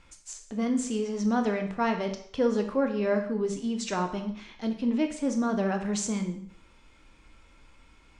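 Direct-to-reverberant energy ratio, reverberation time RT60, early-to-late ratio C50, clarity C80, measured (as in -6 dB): 5.0 dB, 0.60 s, 9.0 dB, 12.0 dB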